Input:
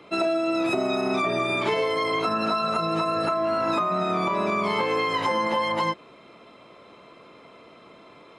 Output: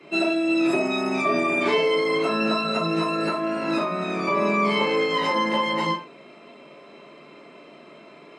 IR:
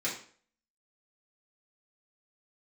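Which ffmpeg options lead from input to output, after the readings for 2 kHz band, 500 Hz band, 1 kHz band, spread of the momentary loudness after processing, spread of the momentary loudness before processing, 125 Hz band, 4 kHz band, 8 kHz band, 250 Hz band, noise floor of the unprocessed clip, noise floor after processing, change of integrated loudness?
+3.5 dB, +1.5 dB, −1.0 dB, 4 LU, 1 LU, +1.0 dB, +3.0 dB, +2.0 dB, +4.0 dB, −50 dBFS, −48 dBFS, +1.5 dB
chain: -filter_complex "[1:a]atrim=start_sample=2205,afade=type=out:start_time=0.23:duration=0.01,atrim=end_sample=10584,asetrate=52920,aresample=44100[link_01];[0:a][link_01]afir=irnorm=-1:irlink=0,volume=-1.5dB"

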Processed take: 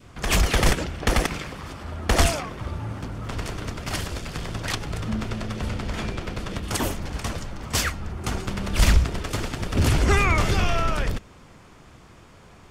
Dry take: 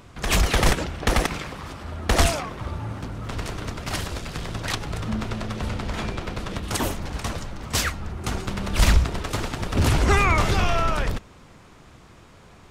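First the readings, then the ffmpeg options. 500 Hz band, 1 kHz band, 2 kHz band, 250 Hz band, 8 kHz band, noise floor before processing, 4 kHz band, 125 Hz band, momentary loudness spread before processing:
−1.0 dB, −2.0 dB, −0.5 dB, 0.0 dB, 0.0 dB, −49 dBFS, −0.5 dB, 0.0 dB, 12 LU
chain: -af "adynamicequalizer=threshold=0.01:dfrequency=930:dqfactor=1.3:tfrequency=930:tqfactor=1.3:attack=5:release=100:ratio=0.375:range=2:mode=cutabove:tftype=bell,bandreject=frequency=3900:width=19"

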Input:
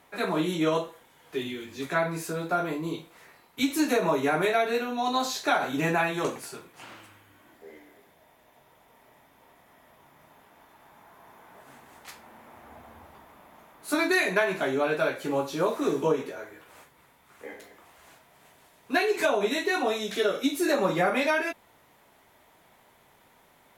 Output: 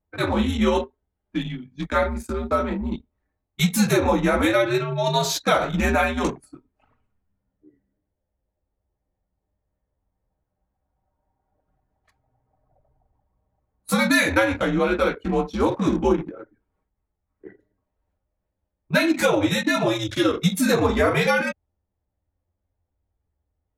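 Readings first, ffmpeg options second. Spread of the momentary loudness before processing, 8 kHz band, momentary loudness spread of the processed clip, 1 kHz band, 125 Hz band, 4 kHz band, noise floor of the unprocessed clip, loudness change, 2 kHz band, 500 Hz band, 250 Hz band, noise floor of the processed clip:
20 LU, +6.5 dB, 11 LU, +3.5 dB, +11.0 dB, +5.5 dB, −60 dBFS, +5.0 dB, +4.5 dB, +4.0 dB, +7.0 dB, −80 dBFS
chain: -af "anlmdn=6.31,afreqshift=-98,bass=frequency=250:gain=1,treble=frequency=4000:gain=4,volume=5dB"

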